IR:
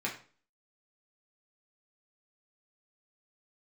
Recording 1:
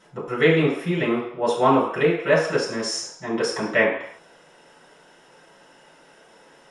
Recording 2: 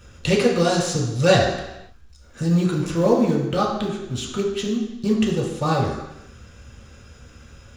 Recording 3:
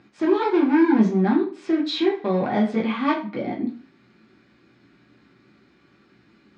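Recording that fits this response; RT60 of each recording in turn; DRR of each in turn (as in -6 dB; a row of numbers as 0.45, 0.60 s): 3; not exponential, 0.90 s, 0.40 s; -7.5, -2.5, -4.0 dB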